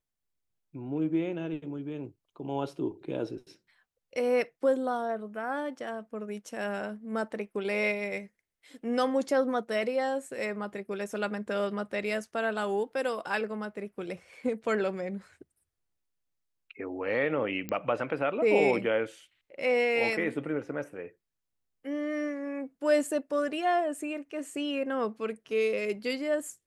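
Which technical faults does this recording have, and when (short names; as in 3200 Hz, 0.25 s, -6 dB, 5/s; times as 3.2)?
17.69 pop -19 dBFS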